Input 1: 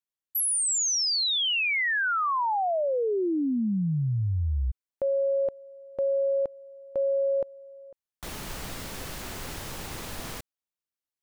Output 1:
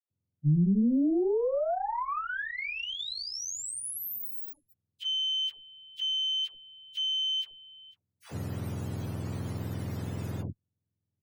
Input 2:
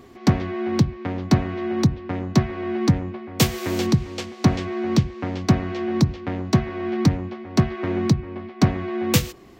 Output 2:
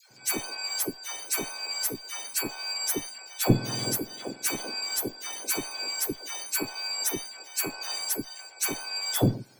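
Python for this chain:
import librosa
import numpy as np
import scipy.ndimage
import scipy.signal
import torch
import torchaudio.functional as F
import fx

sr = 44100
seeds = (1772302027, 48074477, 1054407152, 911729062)

y = fx.octave_mirror(x, sr, pivot_hz=1300.0)
y = fx.tube_stage(y, sr, drive_db=6.0, bias=0.75)
y = fx.dispersion(y, sr, late='lows', ms=108.0, hz=820.0)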